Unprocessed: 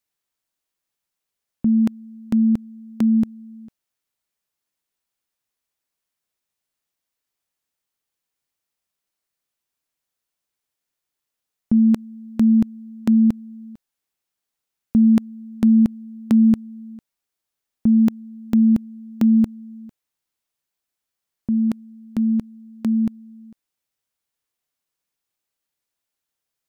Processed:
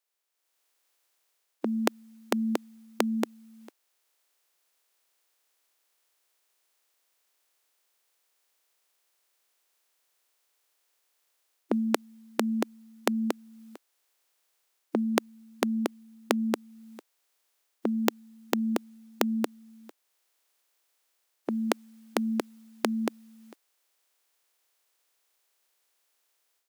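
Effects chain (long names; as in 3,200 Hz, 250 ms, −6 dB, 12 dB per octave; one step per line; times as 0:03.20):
ceiling on every frequency bin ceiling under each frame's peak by 12 dB
high-pass filter 360 Hz 24 dB per octave
automatic gain control gain up to 10.5 dB
level −1 dB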